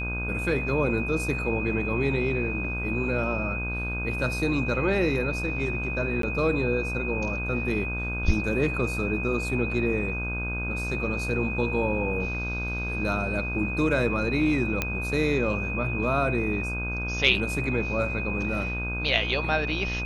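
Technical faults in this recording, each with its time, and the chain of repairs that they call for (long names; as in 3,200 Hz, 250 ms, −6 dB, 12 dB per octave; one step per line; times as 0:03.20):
mains buzz 60 Hz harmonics 27 −32 dBFS
whistle 2,500 Hz −31 dBFS
0:06.22–0:06.23: drop-out 13 ms
0:14.82: click −10 dBFS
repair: click removal
hum removal 60 Hz, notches 27
notch filter 2,500 Hz, Q 30
repair the gap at 0:06.22, 13 ms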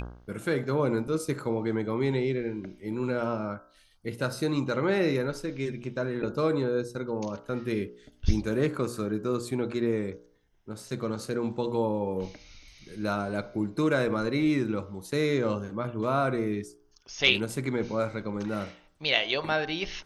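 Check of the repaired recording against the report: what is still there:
none of them is left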